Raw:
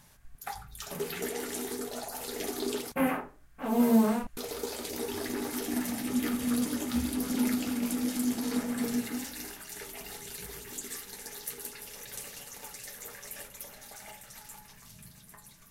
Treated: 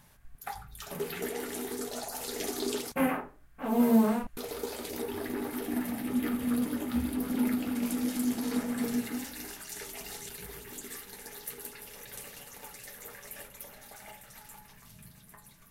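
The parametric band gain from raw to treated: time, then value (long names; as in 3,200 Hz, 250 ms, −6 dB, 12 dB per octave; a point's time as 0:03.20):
parametric band 6,300 Hz 1.4 octaves
−5 dB
from 0:01.77 +2.5 dB
from 0:03.06 −5 dB
from 0:05.02 −13 dB
from 0:07.75 −3.5 dB
from 0:09.49 +2.5 dB
from 0:10.29 −6 dB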